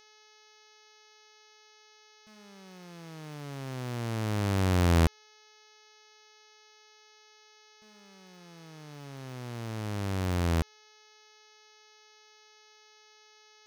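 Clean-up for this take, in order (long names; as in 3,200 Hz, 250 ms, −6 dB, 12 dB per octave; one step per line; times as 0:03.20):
hum removal 427.6 Hz, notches 15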